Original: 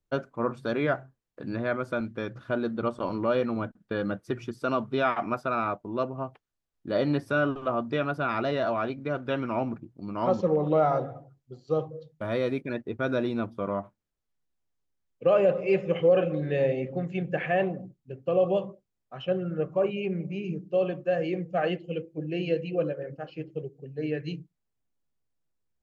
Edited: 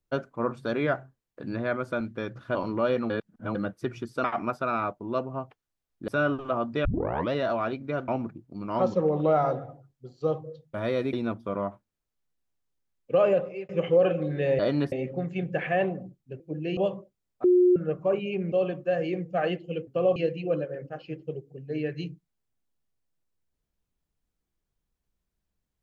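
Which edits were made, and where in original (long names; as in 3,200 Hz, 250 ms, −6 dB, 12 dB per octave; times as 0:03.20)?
0:02.55–0:03.01: remove
0:03.56–0:04.01: reverse
0:04.70–0:05.08: remove
0:06.92–0:07.25: move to 0:16.71
0:08.02: tape start 0.48 s
0:09.25–0:09.55: remove
0:12.60–0:13.25: remove
0:15.41–0:15.81: fade out
0:18.19–0:18.48: swap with 0:22.07–0:22.44
0:19.15–0:19.47: beep over 360 Hz −15.5 dBFS
0:20.23–0:20.72: remove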